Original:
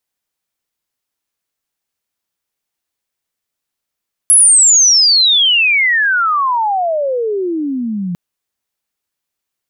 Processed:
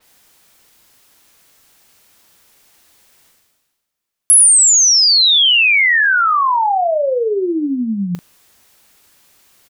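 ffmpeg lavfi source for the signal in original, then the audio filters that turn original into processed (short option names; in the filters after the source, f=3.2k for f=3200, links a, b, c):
-f lavfi -i "aevalsrc='pow(10,(-4-13*t/3.85)/20)*sin(2*PI*11000*3.85/log(170/11000)*(exp(log(170/11000)*t/3.85)-1))':d=3.85:s=44100"
-filter_complex "[0:a]areverse,acompressor=mode=upward:threshold=-31dB:ratio=2.5,areverse,asplit=2[a][b];[b]adelay=40,volume=-11dB[c];[a][c]amix=inputs=2:normalize=0,adynamicequalizer=threshold=0.0631:dfrequency=5000:dqfactor=0.7:tfrequency=5000:tqfactor=0.7:attack=5:release=100:ratio=0.375:range=2:mode=cutabove:tftype=highshelf"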